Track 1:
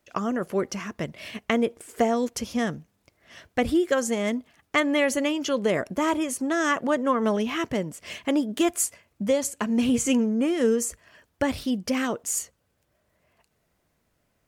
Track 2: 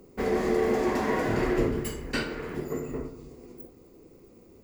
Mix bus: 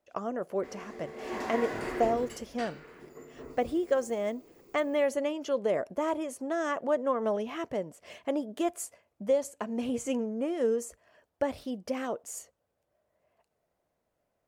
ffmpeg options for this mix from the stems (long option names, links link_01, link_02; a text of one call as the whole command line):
ffmpeg -i stem1.wav -i stem2.wav -filter_complex "[0:a]equalizer=frequency=620:width_type=o:width=1.6:gain=12,volume=-13.5dB[link_01];[1:a]acrossover=split=9900[link_02][link_03];[link_03]acompressor=threshold=-59dB:ratio=4:attack=1:release=60[link_04];[link_02][link_04]amix=inputs=2:normalize=0,lowshelf=frequency=300:gain=-11,adelay=450,volume=7dB,afade=type=in:start_time=1.16:duration=0.21:silence=0.266073,afade=type=out:start_time=2.18:duration=0.33:silence=0.446684,afade=type=in:start_time=3.35:duration=0.29:silence=0.251189[link_05];[link_01][link_05]amix=inputs=2:normalize=0" out.wav